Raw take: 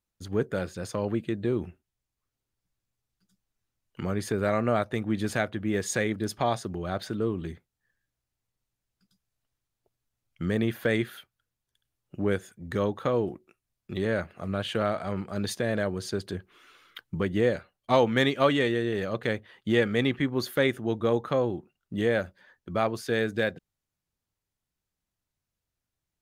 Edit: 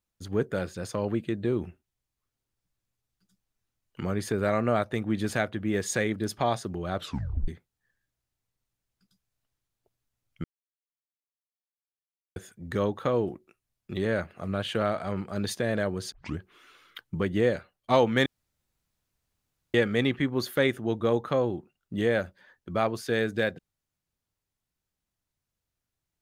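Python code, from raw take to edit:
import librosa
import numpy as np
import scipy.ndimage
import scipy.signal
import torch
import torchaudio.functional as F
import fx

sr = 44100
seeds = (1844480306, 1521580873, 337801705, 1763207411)

y = fx.edit(x, sr, fx.tape_stop(start_s=6.95, length_s=0.53),
    fx.silence(start_s=10.44, length_s=1.92),
    fx.tape_start(start_s=16.12, length_s=0.26),
    fx.room_tone_fill(start_s=18.26, length_s=1.48), tone=tone)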